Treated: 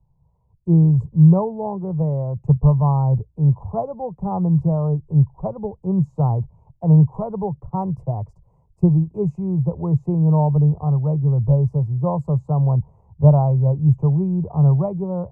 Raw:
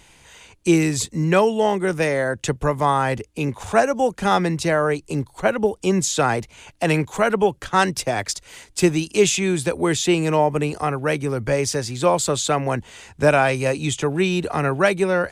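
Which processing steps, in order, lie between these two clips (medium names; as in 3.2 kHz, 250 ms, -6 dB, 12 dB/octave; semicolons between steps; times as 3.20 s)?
elliptic low-pass 1 kHz, stop band 40 dB; resonant low shelf 200 Hz +10.5 dB, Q 3; three bands expanded up and down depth 40%; trim -4.5 dB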